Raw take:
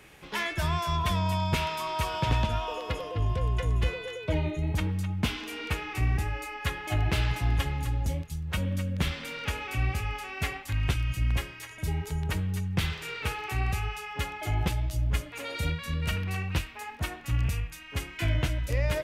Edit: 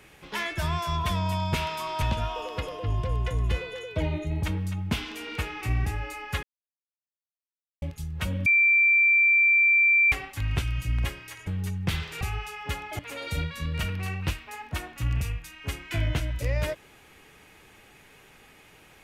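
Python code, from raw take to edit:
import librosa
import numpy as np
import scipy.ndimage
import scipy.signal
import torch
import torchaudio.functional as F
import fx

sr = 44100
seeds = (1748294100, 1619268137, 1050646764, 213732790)

y = fx.edit(x, sr, fx.cut(start_s=2.02, length_s=0.32),
    fx.silence(start_s=6.75, length_s=1.39),
    fx.bleep(start_s=8.78, length_s=1.66, hz=2350.0, db=-16.5),
    fx.cut(start_s=11.79, length_s=0.58),
    fx.cut(start_s=13.11, length_s=0.6),
    fx.cut(start_s=14.49, length_s=0.78), tone=tone)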